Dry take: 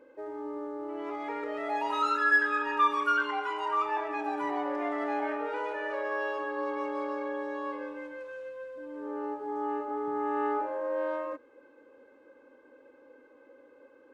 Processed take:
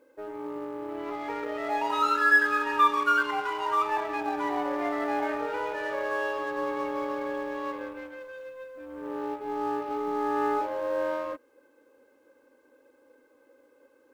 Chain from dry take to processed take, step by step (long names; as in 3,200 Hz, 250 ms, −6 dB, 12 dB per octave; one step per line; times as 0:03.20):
mu-law and A-law mismatch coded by A
level +4 dB